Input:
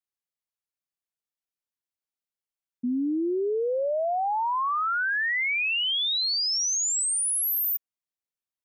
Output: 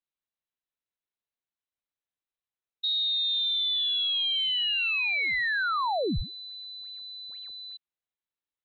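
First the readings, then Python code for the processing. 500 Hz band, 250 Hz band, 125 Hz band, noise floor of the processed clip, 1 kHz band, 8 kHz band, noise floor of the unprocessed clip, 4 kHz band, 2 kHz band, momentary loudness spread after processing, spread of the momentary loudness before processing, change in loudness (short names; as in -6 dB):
-9.5 dB, -10.0 dB, n/a, under -85 dBFS, -6.0 dB, under -40 dB, under -85 dBFS, +3.0 dB, -1.0 dB, 14 LU, 4 LU, -0.5 dB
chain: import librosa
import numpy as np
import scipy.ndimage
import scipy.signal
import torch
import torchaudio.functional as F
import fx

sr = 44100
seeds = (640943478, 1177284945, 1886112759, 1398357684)

y = np.where(x < 0.0, 10.0 ** (-3.0 / 20.0) * x, x)
y = fx.freq_invert(y, sr, carrier_hz=4000)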